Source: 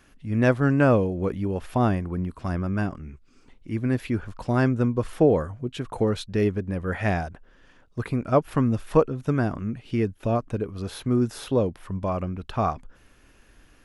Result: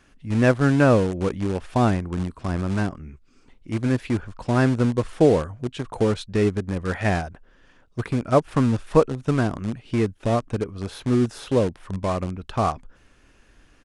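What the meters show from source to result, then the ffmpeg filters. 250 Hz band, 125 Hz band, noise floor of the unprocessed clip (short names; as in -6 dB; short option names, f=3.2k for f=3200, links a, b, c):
+2.0 dB, +2.0 dB, -57 dBFS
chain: -filter_complex "[0:a]asplit=2[a][b];[b]acrusher=bits=3:mix=0:aa=0.000001,volume=-11dB[c];[a][c]amix=inputs=2:normalize=0,aresample=22050,aresample=44100"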